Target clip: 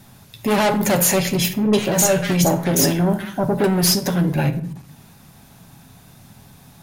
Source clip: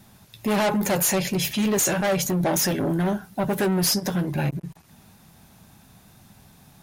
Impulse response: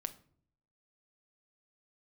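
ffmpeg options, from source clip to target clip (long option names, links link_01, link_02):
-filter_complex "[0:a]asettb=1/sr,asplit=3[link_01][link_02][link_03];[link_01]atrim=end=1.534[link_04];[link_02]atrim=start=1.53:end=3.64,asetpts=PTS-STARTPTS,afade=type=in:duration=0.004:curve=qsin,afade=type=out:start_time=2.106:duration=0.004:curve=qsin,acrossover=split=1400[link_05][link_06];[link_06]adelay=200[link_07];[link_05][link_07]amix=inputs=2:normalize=0,atrim=end_sample=93051[link_08];[link_03]atrim=start=3.636[link_09];[link_04][link_08]acrossfade=duration=0.004:curve1=hsin:curve2=qsin[link_10];[link_10][link_09]acrossfade=duration=0.004:curve1=qsin:curve2=hsin[link_11];[1:a]atrim=start_sample=2205,asetrate=36603,aresample=44100[link_12];[link_11][link_12]afir=irnorm=-1:irlink=0,volume=5.5dB"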